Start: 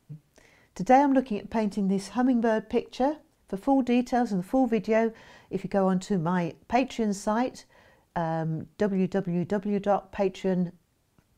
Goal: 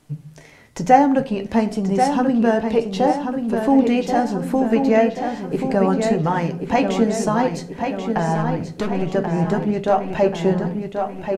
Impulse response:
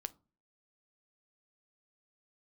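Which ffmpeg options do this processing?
-filter_complex "[0:a]bandreject=f=60:t=h:w=6,bandreject=f=120:t=h:w=6,bandreject=f=180:t=h:w=6,asplit=2[a][b];[b]acompressor=threshold=-34dB:ratio=6,volume=1dB[c];[a][c]amix=inputs=2:normalize=0,asettb=1/sr,asplit=3[d][e][f];[d]atrim=end=8.354[g];[e]atrim=start=8.35:end=9.02,asetpts=PTS-STARTPTS,afade=t=in:d=0.004:c=qsin,afade=t=out:st=0.666:d=0.004:c=qsin,asoftclip=type=hard:threshold=-23dB[h];[f]atrim=start=9.016[i];[g][h]acrossfade=d=0.004:c1=hsin:c2=qsin[j];[j][i]acrossfade=d=0.004:c1=qsin:c2=hsin,flanger=delay=6.5:depth=3.9:regen=62:speed=1.1:shape=sinusoidal,asplit=2[k][l];[l]adelay=1084,lowpass=f=5k:p=1,volume=-6dB,asplit=2[m][n];[n]adelay=1084,lowpass=f=5k:p=1,volume=0.54,asplit=2[o][p];[p]adelay=1084,lowpass=f=5k:p=1,volume=0.54,asplit=2[q][r];[r]adelay=1084,lowpass=f=5k:p=1,volume=0.54,asplit=2[s][t];[t]adelay=1084,lowpass=f=5k:p=1,volume=0.54,asplit=2[u][v];[v]adelay=1084,lowpass=f=5k:p=1,volume=0.54,asplit=2[w][x];[x]adelay=1084,lowpass=f=5k:p=1,volume=0.54[y];[k][m][o][q][s][u][w][y]amix=inputs=8:normalize=0[z];[1:a]atrim=start_sample=2205,asetrate=23814,aresample=44100[aa];[z][aa]afir=irnorm=-1:irlink=0,volume=8dB"

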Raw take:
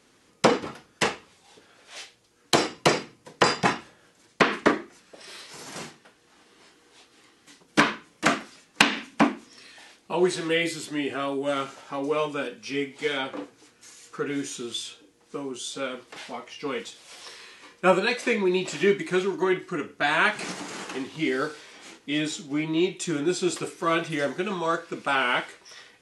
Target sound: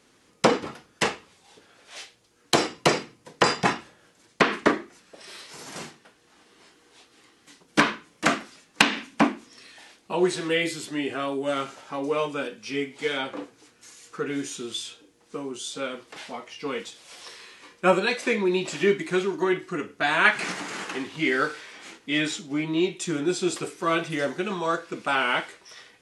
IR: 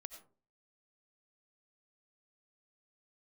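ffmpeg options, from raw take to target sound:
-filter_complex "[0:a]asplit=3[a][b][c];[a]afade=t=out:st=20.24:d=0.02[d];[b]adynamicequalizer=threshold=0.00891:dfrequency=1800:dqfactor=0.87:tfrequency=1800:tqfactor=0.87:attack=5:release=100:ratio=0.375:range=3.5:mode=boostabove:tftype=bell,afade=t=in:st=20.24:d=0.02,afade=t=out:st=22.38:d=0.02[e];[c]afade=t=in:st=22.38:d=0.02[f];[d][e][f]amix=inputs=3:normalize=0"

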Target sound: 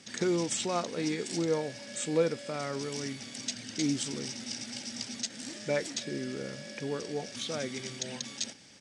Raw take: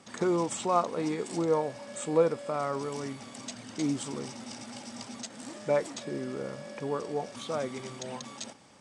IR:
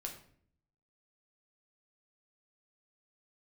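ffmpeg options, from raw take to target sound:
-af "firequalizer=gain_entry='entry(270,0);entry(610,-5);entry(1100,-11);entry(1600,3);entry(5600,9);entry(7900,2)':delay=0.05:min_phase=1"

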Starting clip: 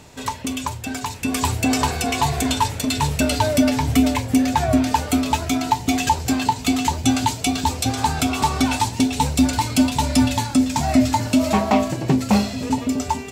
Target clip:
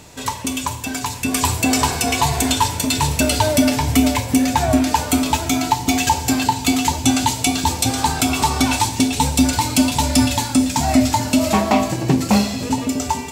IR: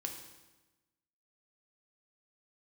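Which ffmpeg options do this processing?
-filter_complex "[0:a]asplit=2[a][b];[1:a]atrim=start_sample=2205,highshelf=f=3.9k:g=10[c];[b][c]afir=irnorm=-1:irlink=0,volume=-2.5dB[d];[a][d]amix=inputs=2:normalize=0,volume=-2dB"

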